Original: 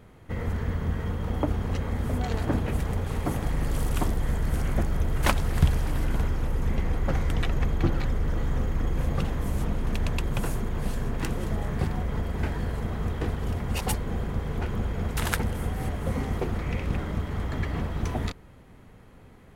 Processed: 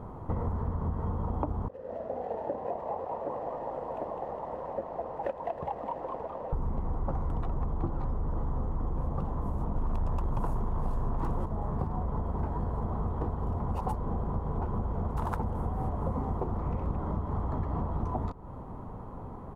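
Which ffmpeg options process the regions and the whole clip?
-filter_complex "[0:a]asettb=1/sr,asplit=3[s0][s1][s2];[s0]atrim=end=1.684[s3];[s1]atrim=start=1.68:end=6.53,asetpts=PTS-STARTPTS,afade=t=in:d=0.004:c=qsin,afade=t=out:st=4.846:d=0.004:c=qsin,asplit=3[s4][s5][s6];[s4]bandpass=f=530:t=q:w=8,volume=1[s7];[s5]bandpass=f=1840:t=q:w=8,volume=0.501[s8];[s6]bandpass=f=2480:t=q:w=8,volume=0.355[s9];[s7][s8][s9]amix=inputs=3:normalize=0,aeval=exprs='sgn(val(0))*max(abs(val(0))-0.00158,0)':c=same,asplit=9[s10][s11][s12][s13][s14][s15][s16][s17][s18];[s11]adelay=206,afreqshift=130,volume=0.562[s19];[s12]adelay=412,afreqshift=260,volume=0.331[s20];[s13]adelay=618,afreqshift=390,volume=0.195[s21];[s14]adelay=824,afreqshift=520,volume=0.116[s22];[s15]adelay=1030,afreqshift=650,volume=0.0684[s23];[s16]adelay=1236,afreqshift=780,volume=0.0403[s24];[s17]adelay=1442,afreqshift=910,volume=0.0237[s25];[s18]adelay=1648,afreqshift=1040,volume=0.014[s26];[s10][s19][s20][s21][s22][s23][s24][s25][s26]amix=inputs=9:normalize=0,atrim=end_sample=213885[s27];[s2]atrim=start=6.526[s28];[s3][s27]acrossfade=d=0.004:c1=hsin:c2=qsin[s29];[s29][s28]acrossfade=d=0.004:c1=qsin:c2=hsin,asettb=1/sr,asplit=3[s30][s31][s32];[s30]atrim=end=9.764[s33];[s31]atrim=start=9.76:end=11.46,asetpts=PTS-STARTPTS,afade=t=in:d=0.004:c=qsin,afade=t=out:st=1.696:d=0.004:c=qsin,equalizer=f=310:t=o:w=2.9:g=-4,aeval=exprs='0.211*sin(PI/2*2.24*val(0)/0.211)':c=same[s34];[s32]atrim=start=11.456[s35];[s33][s34]acrossfade=d=0.004:c1=hsin:c2=qsin[s36];[s36][s35]acrossfade=d=0.004:c1=qsin:c2=hsin,firequalizer=gain_entry='entry(500,0);entry(990,8);entry(1600,-13);entry(2200,-20)':delay=0.05:min_phase=1,acompressor=threshold=0.0126:ratio=6,volume=2.82"

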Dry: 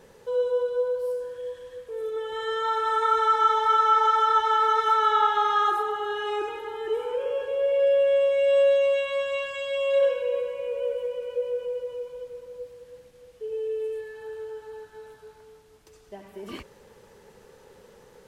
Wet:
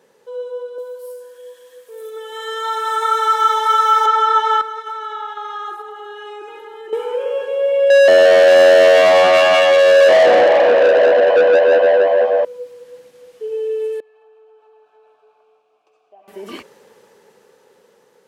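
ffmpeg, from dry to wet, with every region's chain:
-filter_complex "[0:a]asettb=1/sr,asplit=3[s0][s1][s2];[s0]atrim=end=0.784[s3];[s1]atrim=start=0.78:end=4.06,asetpts=PTS-STARTPTS,afade=t=in:d=0.004:c=qsin,afade=t=out:st=3.276:d=0.004:c=qsin,highpass=f=360:p=1,aemphasis=mode=production:type=50fm[s4];[s2]atrim=start=4.056[s5];[s3][s4]acrossfade=d=0.004:c1=hsin:c2=qsin[s6];[s6][s5]acrossfade=d=0.004:c1=qsin:c2=hsin,asettb=1/sr,asplit=3[s7][s8][s9];[s7]atrim=end=4.614[s10];[s8]atrim=start=4.61:end=6.93,asetpts=PTS-STARTPTS,afade=t=in:d=0.004:c=qsin,afade=t=out:st=2.316:d=0.004:c=qsin,agate=range=0.447:threshold=0.0501:ratio=16:release=100:detection=peak,acompressor=threshold=0.0126:ratio=2.5:attack=3.2:release=140:knee=1:detection=peak[s11];[s9]atrim=start=6.926[s12];[s10][s11]acrossfade=d=0.004:c1=hsin:c2=qsin[s13];[s13][s12]acrossfade=d=0.004:c1=qsin:c2=hsin,asettb=1/sr,asplit=3[s14][s15][s16];[s14]atrim=end=7.904[s17];[s15]atrim=start=7.9:end=12.45,asetpts=PTS-STARTPTS,afade=t=in:d=0.004:c=qsin,afade=t=out:st=4.546:d=0.004:c=qsin,asplit=5[s18][s19][s20][s21][s22];[s19]adelay=176,afreqshift=89,volume=0.631[s23];[s20]adelay=352,afreqshift=178,volume=0.209[s24];[s21]adelay=528,afreqshift=267,volume=0.0684[s25];[s22]adelay=704,afreqshift=356,volume=0.0226[s26];[s18][s23][s24][s25][s26]amix=inputs=5:normalize=0,atrim=end_sample=200655,adynamicsmooth=sensitivity=1:basefreq=2700,asplit=2[s27][s28];[s28]highpass=f=720:p=1,volume=25.1,asoftclip=type=tanh:threshold=0.299[s29];[s27][s29]amix=inputs=2:normalize=0,lowpass=f=2700:p=1,volume=0.501[s30];[s16]atrim=start=12.446[s31];[s17][s30]acrossfade=d=0.004:c1=hsin:c2=qsin[s32];[s32][s31]acrossfade=d=0.004:c1=qsin:c2=hsin,asettb=1/sr,asplit=3[s33][s34][s35];[s33]atrim=end=14.004[s36];[s34]atrim=start=14:end=16.28,asetpts=PTS-STARTPTS,afade=t=in:d=0.004:c=qsin,afade=t=out:st=2.276:d=0.004:c=qsin,acompressor=threshold=0.00708:ratio=2:attack=3.2:release=140:knee=1:detection=peak,asplit=3[s37][s38][s39];[s37]bandpass=f=730:t=q:w=8,volume=1[s40];[s38]bandpass=f=1090:t=q:w=8,volume=0.501[s41];[s39]bandpass=f=2440:t=q:w=8,volume=0.355[s42];[s40][s41][s42]amix=inputs=3:normalize=0[s43];[s35]atrim=start=16.276[s44];[s36][s43]acrossfade=d=0.004:c1=hsin:c2=qsin[s45];[s45][s44]acrossfade=d=0.004:c1=qsin:c2=hsin,highpass=230,dynaudnorm=f=440:g=11:m=5.01,volume=0.75"

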